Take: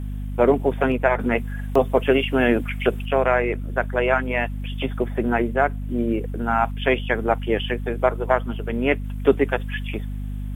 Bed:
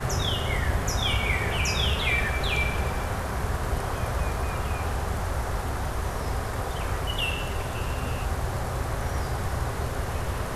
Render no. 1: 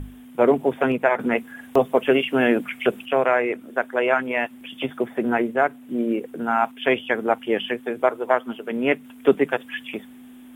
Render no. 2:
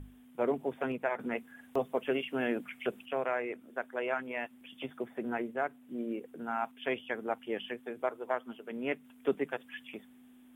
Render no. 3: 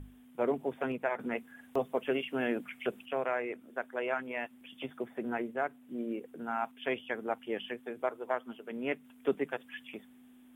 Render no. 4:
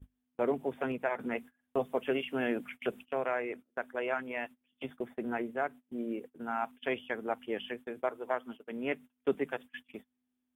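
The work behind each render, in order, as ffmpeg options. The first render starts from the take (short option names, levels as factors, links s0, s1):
-af "bandreject=f=50:t=h:w=6,bandreject=f=100:t=h:w=6,bandreject=f=150:t=h:w=6,bandreject=f=200:t=h:w=6"
-af "volume=0.211"
-af anull
-af "agate=range=0.0501:threshold=0.00562:ratio=16:detection=peak,equalizer=f=67:w=1.5:g=5.5"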